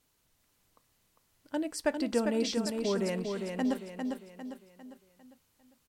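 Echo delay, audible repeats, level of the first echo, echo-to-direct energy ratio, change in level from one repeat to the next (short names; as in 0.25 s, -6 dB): 0.401 s, 5, -5.0 dB, -4.0 dB, -7.5 dB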